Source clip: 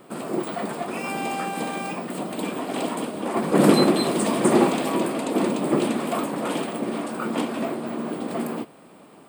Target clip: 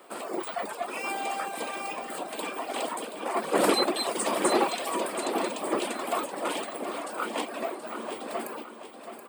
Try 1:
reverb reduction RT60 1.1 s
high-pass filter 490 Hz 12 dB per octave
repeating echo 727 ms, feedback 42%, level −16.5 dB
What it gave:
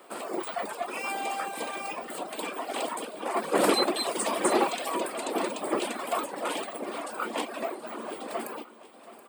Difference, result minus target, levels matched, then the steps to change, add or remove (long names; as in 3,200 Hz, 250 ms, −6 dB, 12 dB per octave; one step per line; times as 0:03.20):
echo-to-direct −7 dB
change: repeating echo 727 ms, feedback 42%, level −9.5 dB